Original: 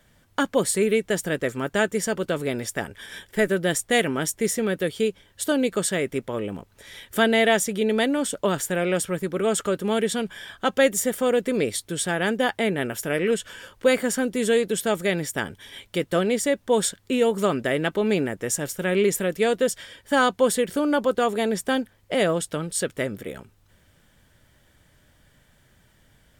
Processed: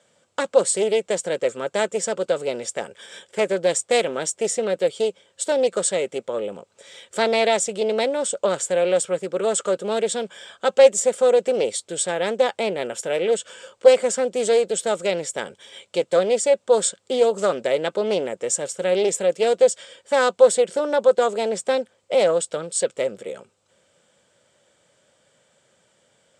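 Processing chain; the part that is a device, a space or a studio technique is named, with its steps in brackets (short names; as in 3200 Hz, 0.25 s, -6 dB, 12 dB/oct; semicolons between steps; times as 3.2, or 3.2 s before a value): bell 1200 Hz +3.5 dB 0.2 oct; full-range speaker at full volume (Doppler distortion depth 0.22 ms; speaker cabinet 250–8200 Hz, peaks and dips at 280 Hz -8 dB, 530 Hz +9 dB, 1100 Hz -3 dB, 1800 Hz -7 dB, 7800 Hz +10 dB)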